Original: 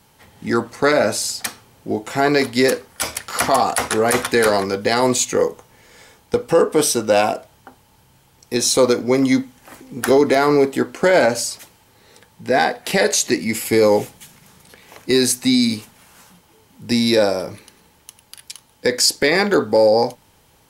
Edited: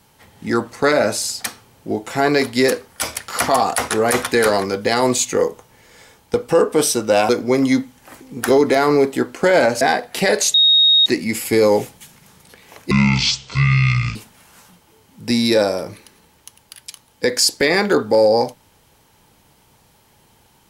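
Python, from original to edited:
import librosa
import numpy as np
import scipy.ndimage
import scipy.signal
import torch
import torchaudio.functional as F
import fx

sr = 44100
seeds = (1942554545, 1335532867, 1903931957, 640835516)

y = fx.edit(x, sr, fx.cut(start_s=7.29, length_s=1.6),
    fx.cut(start_s=11.41, length_s=1.12),
    fx.insert_tone(at_s=13.26, length_s=0.52, hz=3750.0, db=-9.0),
    fx.speed_span(start_s=15.11, length_s=0.66, speed=0.53), tone=tone)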